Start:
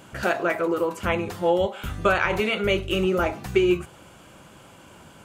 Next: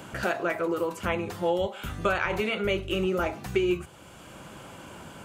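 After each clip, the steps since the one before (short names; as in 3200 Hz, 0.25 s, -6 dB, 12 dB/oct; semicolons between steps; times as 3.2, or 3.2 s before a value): three-band squash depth 40%; gain -4.5 dB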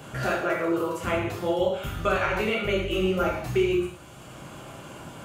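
non-linear reverb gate 0.23 s falling, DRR -3.5 dB; gain -3 dB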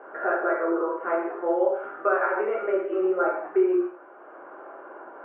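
elliptic band-pass 360–1600 Hz, stop band 50 dB; air absorption 86 m; gain +3 dB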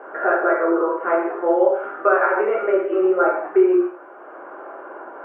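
HPF 170 Hz; gain +6.5 dB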